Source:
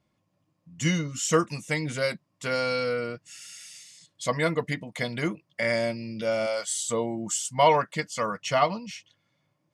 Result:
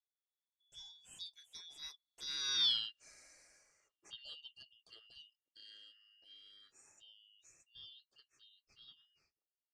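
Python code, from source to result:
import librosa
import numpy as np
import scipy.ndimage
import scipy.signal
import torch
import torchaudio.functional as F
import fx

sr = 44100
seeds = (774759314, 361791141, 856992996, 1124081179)

y = fx.band_shuffle(x, sr, order='3412')
y = fx.doppler_pass(y, sr, speed_mps=33, closest_m=3.2, pass_at_s=2.68)
y = y * 10.0 ** (-3.0 / 20.0)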